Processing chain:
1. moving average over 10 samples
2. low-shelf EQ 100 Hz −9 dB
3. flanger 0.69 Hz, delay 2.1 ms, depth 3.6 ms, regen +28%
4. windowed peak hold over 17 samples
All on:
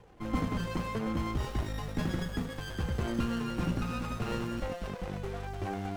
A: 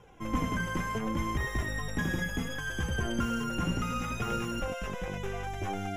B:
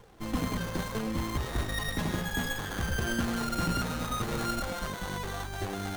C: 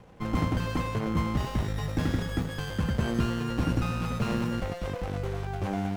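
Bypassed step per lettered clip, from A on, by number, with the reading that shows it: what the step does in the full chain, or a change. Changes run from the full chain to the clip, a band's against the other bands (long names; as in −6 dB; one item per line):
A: 4, distortion level −4 dB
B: 1, 8 kHz band +9.0 dB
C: 3, change in integrated loudness +4.5 LU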